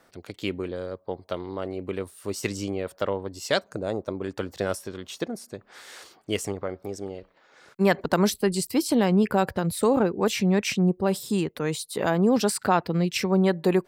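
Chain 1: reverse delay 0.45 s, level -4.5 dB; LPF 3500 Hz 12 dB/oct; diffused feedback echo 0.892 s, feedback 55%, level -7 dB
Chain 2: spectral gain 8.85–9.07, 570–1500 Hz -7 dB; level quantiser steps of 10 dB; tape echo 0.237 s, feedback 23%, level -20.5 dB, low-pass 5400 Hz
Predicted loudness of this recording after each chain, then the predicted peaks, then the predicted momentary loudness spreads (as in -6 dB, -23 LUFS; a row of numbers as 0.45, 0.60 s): -24.5, -29.0 LUFS; -6.5, -7.5 dBFS; 13, 16 LU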